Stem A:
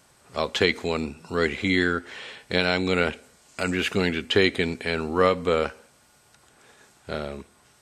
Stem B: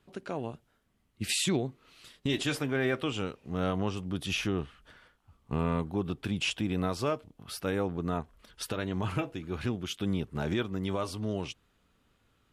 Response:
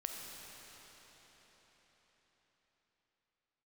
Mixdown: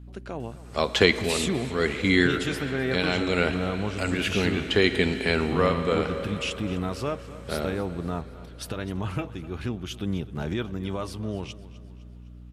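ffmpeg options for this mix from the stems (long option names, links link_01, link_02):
-filter_complex "[0:a]adelay=400,volume=-0.5dB,asplit=2[link_01][link_02];[link_02]volume=-6.5dB[link_03];[1:a]aeval=exprs='val(0)+0.00562*(sin(2*PI*60*n/s)+sin(2*PI*2*60*n/s)/2+sin(2*PI*3*60*n/s)/3+sin(2*PI*4*60*n/s)/4+sin(2*PI*5*60*n/s)/5)':channel_layout=same,volume=-0.5dB,asplit=4[link_04][link_05][link_06][link_07];[link_05]volume=-23.5dB[link_08];[link_06]volume=-17dB[link_09];[link_07]apad=whole_len=362092[link_10];[link_01][link_10]sidechaincompress=threshold=-34dB:ratio=8:attack=16:release=839[link_11];[2:a]atrim=start_sample=2205[link_12];[link_03][link_08]amix=inputs=2:normalize=0[link_13];[link_13][link_12]afir=irnorm=-1:irlink=0[link_14];[link_09]aecho=0:1:255|510|765|1020|1275|1530|1785:1|0.49|0.24|0.118|0.0576|0.0282|0.0138[link_15];[link_11][link_04][link_14][link_15]amix=inputs=4:normalize=0,lowshelf=frequency=170:gain=3.5"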